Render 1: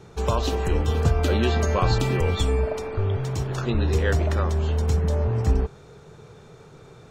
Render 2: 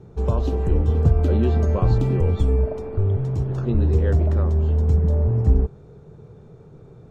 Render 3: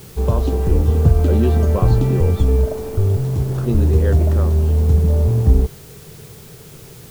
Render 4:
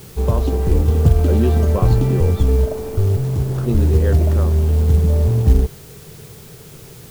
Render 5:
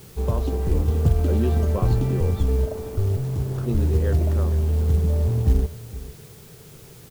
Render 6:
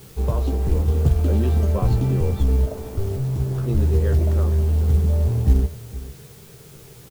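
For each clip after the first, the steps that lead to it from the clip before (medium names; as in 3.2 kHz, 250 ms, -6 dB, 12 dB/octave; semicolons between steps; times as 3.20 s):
tilt shelf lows +10 dB, about 850 Hz; trim -5.5 dB
word length cut 8-bit, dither triangular; trim +4 dB
short-mantissa float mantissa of 4-bit
delay 460 ms -17 dB; trim -6 dB
doubling 15 ms -7 dB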